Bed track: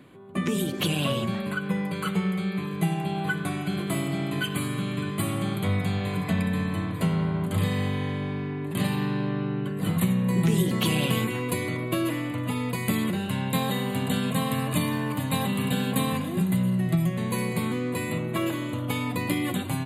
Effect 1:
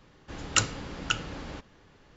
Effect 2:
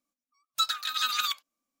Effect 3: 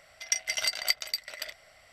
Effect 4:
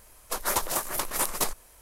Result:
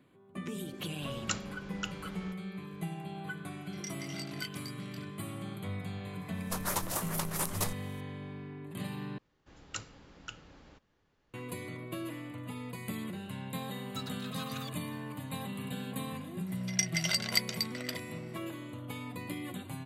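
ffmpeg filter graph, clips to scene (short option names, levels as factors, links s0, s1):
-filter_complex "[1:a]asplit=2[s0][s1];[3:a]asplit=2[s2][s3];[0:a]volume=0.224[s4];[s2]flanger=delay=22.5:depth=5:speed=1.5[s5];[4:a]dynaudnorm=f=100:g=3:m=3.76[s6];[s4]asplit=2[s7][s8];[s7]atrim=end=9.184[s9];[s1]atrim=end=2.16,asetpts=PTS-STARTPTS,volume=0.15[s10];[s8]atrim=start=11.336[s11];[s0]atrim=end=2.16,asetpts=PTS-STARTPTS,volume=0.299,afade=t=in:d=0.004:c=hsin,afade=t=out:st=2.156:d=0.004:c=hsin,adelay=730[s12];[s5]atrim=end=1.92,asetpts=PTS-STARTPTS,volume=0.237,afade=t=in:d=0.004:c=hsin,afade=t=out:st=1.916:d=0.004:c=hsin,adelay=3520[s13];[s6]atrim=end=1.81,asetpts=PTS-STARTPTS,volume=0.15,afade=t=in:d=0.004:c=hsin,afade=t=out:st=1.806:d=0.004:c=hsin,adelay=6200[s14];[2:a]atrim=end=1.8,asetpts=PTS-STARTPTS,volume=0.141,afade=t=in:d=0.004:c=hsin,afade=t=out:st=1.796:d=0.004:c=hsin,adelay=13370[s15];[s3]atrim=end=1.92,asetpts=PTS-STARTPTS,volume=0.794,afade=t=in:d=0.004:c=hsin,afade=t=out:st=1.916:d=0.004:c=hsin,adelay=16470[s16];[s9][s10]acrossfade=d=0.004:c1=hsin:c2=hsin[s17];[s17][s11]acrossfade=d=0.004:c1=hsin:c2=hsin[s18];[s18][s12][s13][s14][s15][s16]amix=inputs=6:normalize=0"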